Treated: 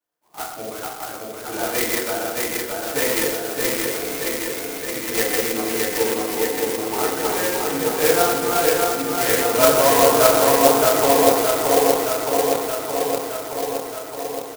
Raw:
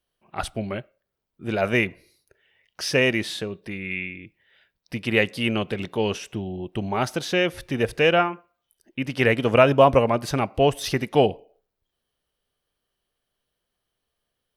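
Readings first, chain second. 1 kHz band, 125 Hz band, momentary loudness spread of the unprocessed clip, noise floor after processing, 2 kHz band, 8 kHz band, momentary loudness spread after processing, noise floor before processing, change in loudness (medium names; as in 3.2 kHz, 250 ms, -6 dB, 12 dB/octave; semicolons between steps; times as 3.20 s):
+6.0 dB, -7.5 dB, 15 LU, -34 dBFS, +1.5 dB, +17.5 dB, 14 LU, -81 dBFS, +4.0 dB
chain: backward echo that repeats 310 ms, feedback 84%, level -1 dB; frequency weighting A; on a send: delay 124 ms -10.5 dB; on the sum: FDN reverb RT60 0.74 s, low-frequency decay 0.8×, high-frequency decay 0.25×, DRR -9.5 dB; sampling jitter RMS 0.097 ms; trim -9.5 dB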